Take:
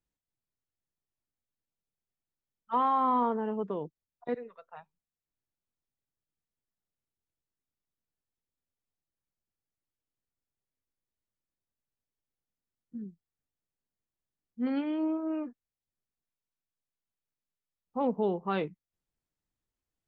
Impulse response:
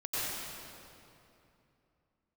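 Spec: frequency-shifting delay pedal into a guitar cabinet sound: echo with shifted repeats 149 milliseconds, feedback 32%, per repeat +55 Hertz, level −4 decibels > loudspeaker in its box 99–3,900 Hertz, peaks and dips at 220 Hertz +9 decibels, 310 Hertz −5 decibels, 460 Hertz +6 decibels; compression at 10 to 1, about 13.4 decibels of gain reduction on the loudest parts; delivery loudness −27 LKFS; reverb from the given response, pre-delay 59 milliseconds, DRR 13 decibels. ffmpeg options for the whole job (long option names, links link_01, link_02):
-filter_complex "[0:a]acompressor=threshold=-37dB:ratio=10,asplit=2[link_01][link_02];[1:a]atrim=start_sample=2205,adelay=59[link_03];[link_02][link_03]afir=irnorm=-1:irlink=0,volume=-20dB[link_04];[link_01][link_04]amix=inputs=2:normalize=0,asplit=5[link_05][link_06][link_07][link_08][link_09];[link_06]adelay=149,afreqshift=55,volume=-4dB[link_10];[link_07]adelay=298,afreqshift=110,volume=-13.9dB[link_11];[link_08]adelay=447,afreqshift=165,volume=-23.8dB[link_12];[link_09]adelay=596,afreqshift=220,volume=-33.7dB[link_13];[link_05][link_10][link_11][link_12][link_13]amix=inputs=5:normalize=0,highpass=99,equalizer=frequency=220:width_type=q:width=4:gain=9,equalizer=frequency=310:width_type=q:width=4:gain=-5,equalizer=frequency=460:width_type=q:width=4:gain=6,lowpass=frequency=3900:width=0.5412,lowpass=frequency=3900:width=1.3066,volume=12.5dB"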